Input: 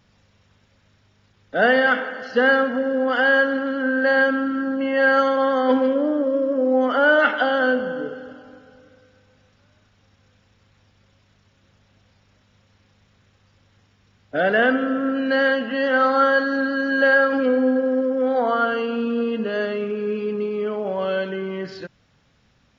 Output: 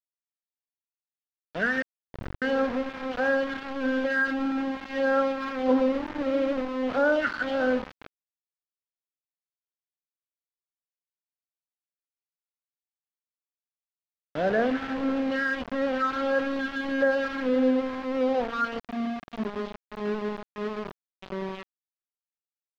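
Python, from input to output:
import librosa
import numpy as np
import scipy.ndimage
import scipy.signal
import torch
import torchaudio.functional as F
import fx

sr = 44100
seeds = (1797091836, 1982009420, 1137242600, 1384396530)

y = fx.phaser_stages(x, sr, stages=4, low_hz=590.0, high_hz=3700.0, hz=1.6, feedback_pct=30)
y = fx.schmitt(y, sr, flips_db=-31.5, at=(1.82, 2.42))
y = fx.spec_box(y, sr, start_s=18.79, length_s=2.44, low_hz=450.0, high_hz=3000.0, gain_db=-24)
y = np.where(np.abs(y) >= 10.0 ** (-24.0 / 20.0), y, 0.0)
y = fx.air_absorb(y, sr, metres=240.0)
y = F.gain(torch.from_numpy(y), -4.0).numpy()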